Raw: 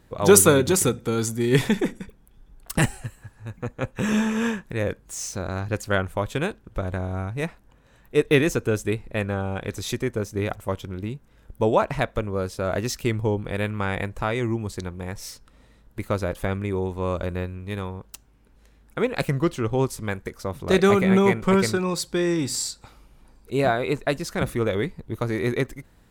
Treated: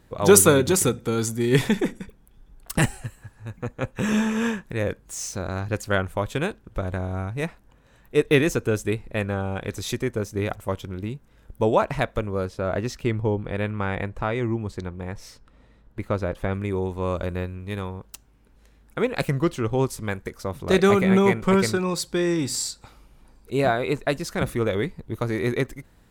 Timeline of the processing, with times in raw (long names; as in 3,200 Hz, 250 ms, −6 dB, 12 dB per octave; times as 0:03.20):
0:12.45–0:16.54: low-pass filter 2,600 Hz 6 dB per octave